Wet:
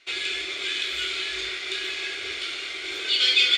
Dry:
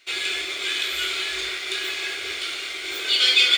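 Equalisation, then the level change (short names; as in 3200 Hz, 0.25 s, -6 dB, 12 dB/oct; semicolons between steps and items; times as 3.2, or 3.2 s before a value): dynamic EQ 880 Hz, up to -7 dB, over -38 dBFS, Q 0.78; air absorption 62 m; 0.0 dB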